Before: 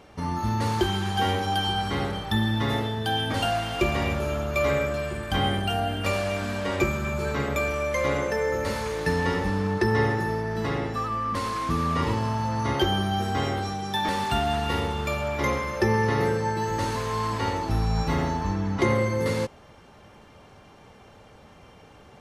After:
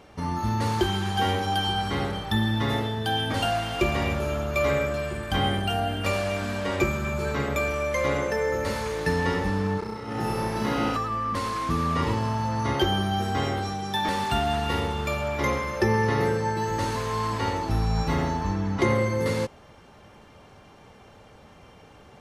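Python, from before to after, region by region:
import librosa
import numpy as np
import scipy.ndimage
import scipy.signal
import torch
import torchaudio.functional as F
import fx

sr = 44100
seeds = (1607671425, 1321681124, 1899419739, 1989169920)

y = fx.chain(x, sr, fx.notch(hz=1800.0, q=11.0),
    fx.over_compress(threshold_db=-28.0, ratio=-0.5),
    fx.room_flutter(wall_m=5.6, rt60_s=1.5), at=(9.79, 10.97))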